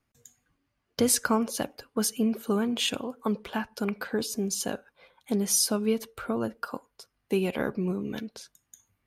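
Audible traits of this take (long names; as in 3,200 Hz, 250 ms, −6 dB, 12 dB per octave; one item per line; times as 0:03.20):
background noise floor −78 dBFS
spectral slope −4.0 dB per octave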